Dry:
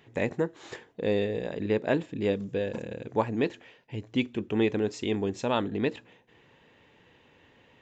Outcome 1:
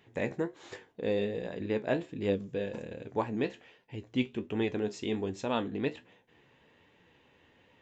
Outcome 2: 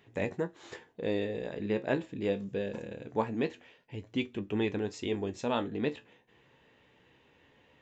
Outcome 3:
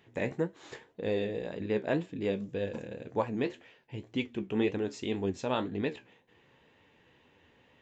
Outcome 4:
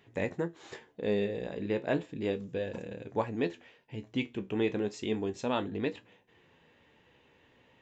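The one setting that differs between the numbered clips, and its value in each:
flange, rate: 1.3 Hz, 0.22 Hz, 1.9 Hz, 0.33 Hz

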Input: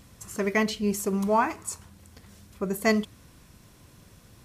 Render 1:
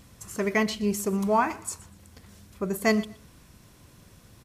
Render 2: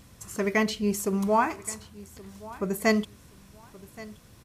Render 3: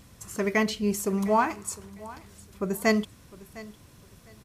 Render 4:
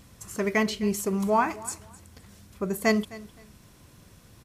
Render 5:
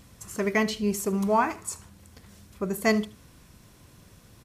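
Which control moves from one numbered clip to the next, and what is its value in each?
feedback delay, time: 121 ms, 1124 ms, 706 ms, 259 ms, 76 ms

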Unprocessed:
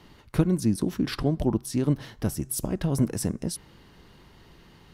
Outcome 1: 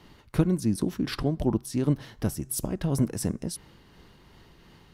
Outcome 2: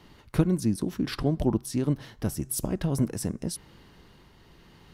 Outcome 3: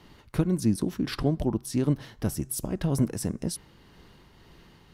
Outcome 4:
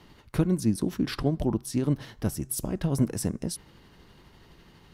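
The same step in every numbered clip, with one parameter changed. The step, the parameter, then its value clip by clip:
tremolo, rate: 2.8 Hz, 0.86 Hz, 1.8 Hz, 12 Hz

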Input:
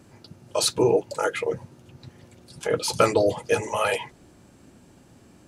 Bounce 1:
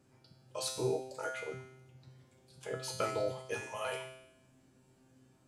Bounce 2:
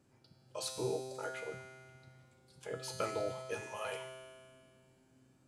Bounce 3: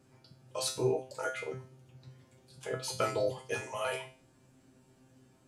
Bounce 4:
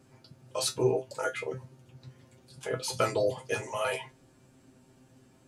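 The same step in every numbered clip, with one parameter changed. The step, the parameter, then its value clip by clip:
feedback comb, decay: 0.87 s, 2 s, 0.39 s, 0.16 s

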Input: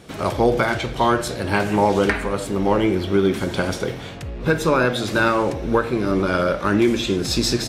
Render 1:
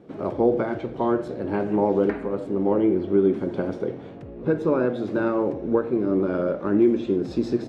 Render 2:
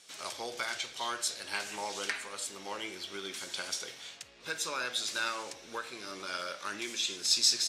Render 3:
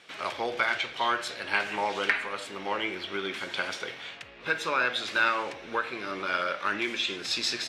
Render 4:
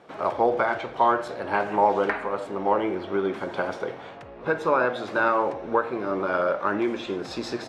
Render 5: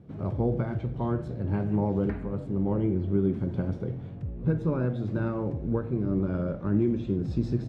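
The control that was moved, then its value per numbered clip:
band-pass filter, frequency: 330 Hz, 6.5 kHz, 2.5 kHz, 860 Hz, 120 Hz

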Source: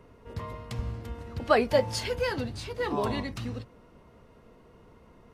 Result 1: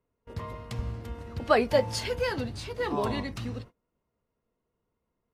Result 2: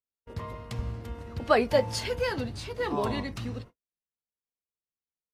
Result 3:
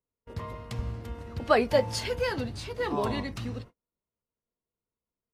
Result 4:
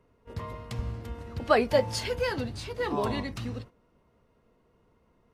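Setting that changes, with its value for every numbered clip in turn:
gate, range: -26 dB, -54 dB, -39 dB, -11 dB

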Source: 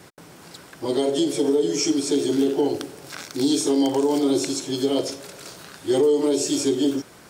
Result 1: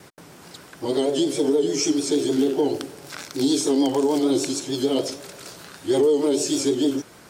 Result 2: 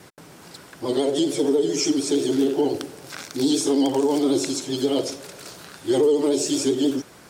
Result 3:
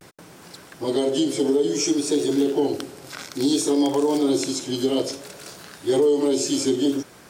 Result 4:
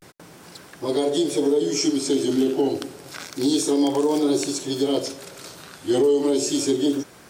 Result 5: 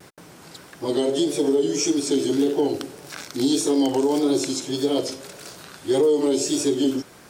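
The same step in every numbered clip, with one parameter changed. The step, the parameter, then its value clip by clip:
vibrato, rate: 6.6 Hz, 13 Hz, 0.58 Hz, 0.3 Hz, 1.7 Hz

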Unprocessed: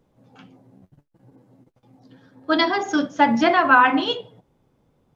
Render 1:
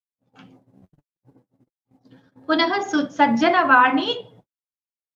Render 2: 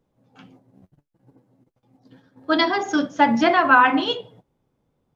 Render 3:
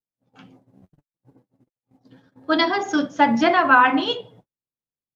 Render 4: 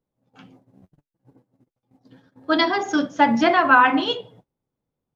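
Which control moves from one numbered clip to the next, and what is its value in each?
gate, range: -58 dB, -7 dB, -39 dB, -19 dB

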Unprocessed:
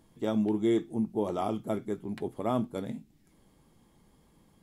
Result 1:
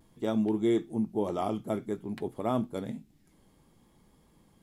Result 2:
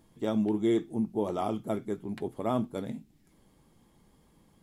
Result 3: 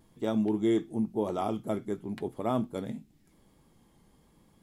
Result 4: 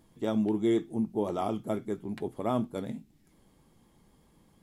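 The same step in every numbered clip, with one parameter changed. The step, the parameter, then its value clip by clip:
vibrato, rate: 0.56 Hz, 16 Hz, 0.94 Hz, 8.1 Hz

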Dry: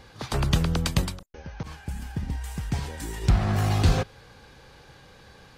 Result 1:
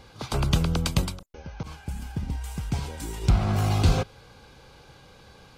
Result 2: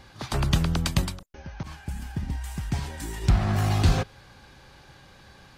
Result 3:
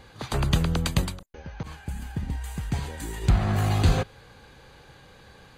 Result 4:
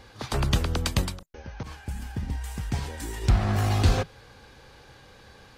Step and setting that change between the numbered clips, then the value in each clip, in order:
band-stop, frequency: 1.8 kHz, 470 Hz, 5.4 kHz, 160 Hz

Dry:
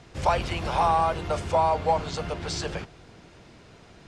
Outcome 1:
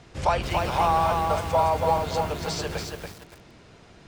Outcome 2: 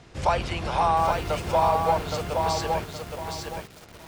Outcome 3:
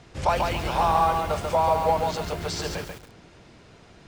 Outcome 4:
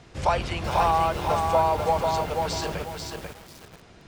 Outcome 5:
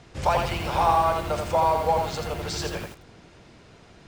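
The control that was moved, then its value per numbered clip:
bit-crushed delay, time: 283 ms, 818 ms, 139 ms, 491 ms, 83 ms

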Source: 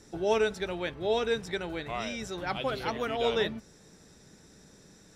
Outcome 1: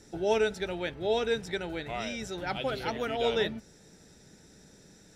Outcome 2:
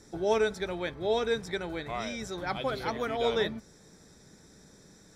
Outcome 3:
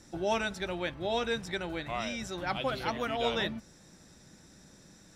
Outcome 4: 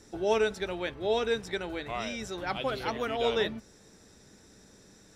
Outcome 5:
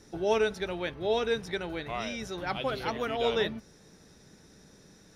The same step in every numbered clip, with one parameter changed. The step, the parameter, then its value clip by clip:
band-stop, frequency: 1.1 kHz, 2.8 kHz, 430 Hz, 160 Hz, 7.6 kHz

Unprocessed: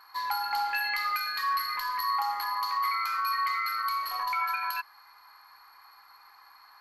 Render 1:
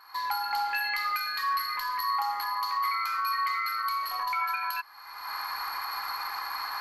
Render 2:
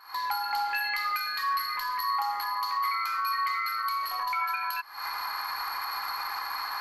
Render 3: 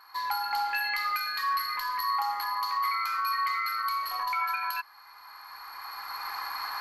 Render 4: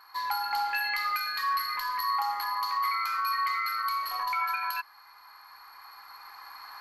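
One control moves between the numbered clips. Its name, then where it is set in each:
recorder AGC, rising by: 37 dB/s, 91 dB/s, 13 dB/s, 5.2 dB/s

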